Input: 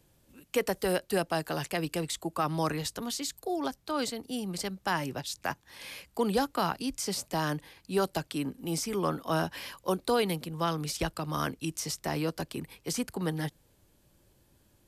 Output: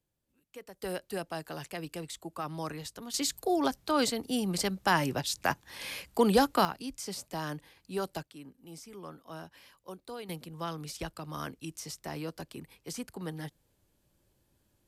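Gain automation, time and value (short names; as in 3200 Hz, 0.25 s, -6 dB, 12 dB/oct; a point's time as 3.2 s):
-19 dB
from 0.82 s -7.5 dB
from 3.14 s +4 dB
from 6.65 s -6 dB
from 8.23 s -15.5 dB
from 10.29 s -7 dB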